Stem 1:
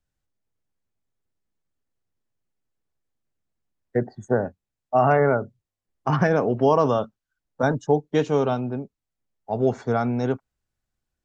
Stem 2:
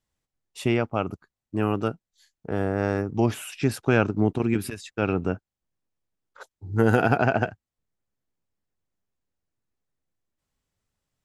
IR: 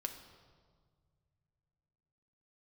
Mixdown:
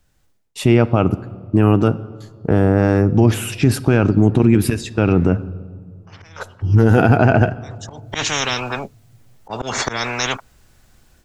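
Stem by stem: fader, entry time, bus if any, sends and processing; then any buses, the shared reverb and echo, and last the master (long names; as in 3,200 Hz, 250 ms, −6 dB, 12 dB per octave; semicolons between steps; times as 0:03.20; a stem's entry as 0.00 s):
−7.5 dB, 0.00 s, no send, volume swells 195 ms; every bin compressed towards the loudest bin 10 to 1; automatic ducking −24 dB, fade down 0.25 s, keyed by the second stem
−1.5 dB, 0.00 s, send −5 dB, noise gate with hold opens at −49 dBFS; low-shelf EQ 310 Hz +9 dB; brickwall limiter −13.5 dBFS, peak gain reduction 11 dB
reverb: on, RT60 1.8 s, pre-delay 3 ms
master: automatic gain control gain up to 11 dB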